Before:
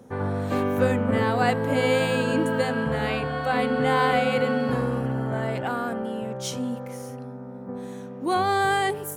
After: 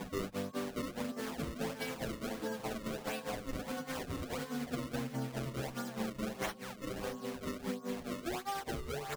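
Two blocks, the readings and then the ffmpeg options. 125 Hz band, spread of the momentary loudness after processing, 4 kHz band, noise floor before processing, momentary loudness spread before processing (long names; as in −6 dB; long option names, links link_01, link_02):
−15.0 dB, 2 LU, −11.5 dB, −38 dBFS, 14 LU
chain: -filter_complex "[0:a]aresample=16000,asoftclip=type=tanh:threshold=-18dB,aresample=44100,tremolo=f=4.8:d=1,highpass=frequency=150:width=0.5412,highpass=frequency=150:width=1.3066,asplit=2[link_01][link_02];[link_02]aecho=0:1:506|1012|1518|2024|2530:0.126|0.0743|0.0438|0.0259|0.0153[link_03];[link_01][link_03]amix=inputs=2:normalize=0,aeval=exprs='val(0)+0.00158*sin(2*PI*1100*n/s)':channel_layout=same,alimiter=limit=-23.5dB:level=0:latency=1:release=65,bass=frequency=250:gain=4,treble=frequency=4000:gain=15,acompressor=threshold=-43dB:ratio=12,acrusher=samples=31:mix=1:aa=0.000001:lfo=1:lforange=49.6:lforate=1.5,asplit=2[link_04][link_05];[link_05]adelay=7.7,afreqshift=-0.28[link_06];[link_04][link_06]amix=inputs=2:normalize=1,volume=10.5dB"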